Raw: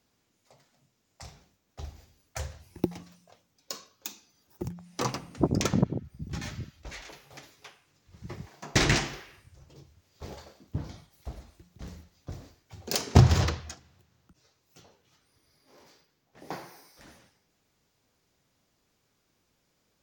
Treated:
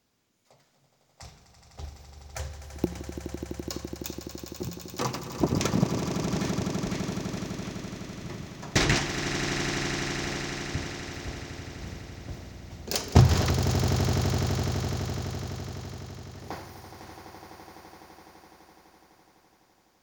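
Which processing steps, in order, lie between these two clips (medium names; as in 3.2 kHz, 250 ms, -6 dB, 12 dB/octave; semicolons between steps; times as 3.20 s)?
echo with a slow build-up 84 ms, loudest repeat 8, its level -11 dB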